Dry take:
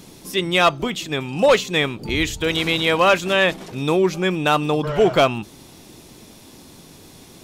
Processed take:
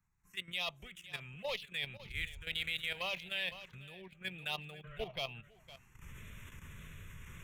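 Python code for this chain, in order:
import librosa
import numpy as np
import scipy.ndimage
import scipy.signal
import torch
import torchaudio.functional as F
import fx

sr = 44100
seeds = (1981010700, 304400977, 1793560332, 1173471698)

p1 = fx.wiener(x, sr, points=9)
p2 = fx.recorder_agc(p1, sr, target_db=-16.0, rise_db_per_s=28.0, max_gain_db=30)
p3 = p2 * (1.0 - 0.28 / 2.0 + 0.28 / 2.0 * np.cos(2.0 * np.pi * 1.6 * (np.arange(len(p2)) / sr)))
p4 = fx.env_phaser(p3, sr, low_hz=540.0, high_hz=1500.0, full_db=-13.5)
p5 = fx.tone_stack(p4, sr, knobs='10-0-10')
p6 = p5 + fx.echo_single(p5, sr, ms=508, db=-13.5, dry=0)
p7 = fx.level_steps(p6, sr, step_db=11)
p8 = fx.peak_eq(p7, sr, hz=180.0, db=2.5, octaves=1.4)
p9 = fx.band_widen(p8, sr, depth_pct=40)
y = p9 * librosa.db_to_amplitude(-4.5)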